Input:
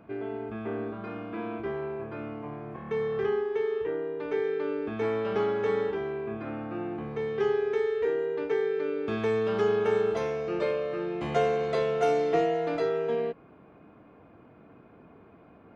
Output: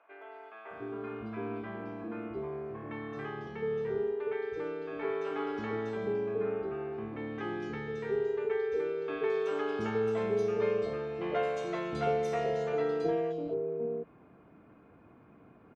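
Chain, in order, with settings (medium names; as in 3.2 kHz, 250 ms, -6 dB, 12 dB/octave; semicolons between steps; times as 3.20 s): three bands offset in time mids, highs, lows 220/710 ms, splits 590/3600 Hz; trim -3 dB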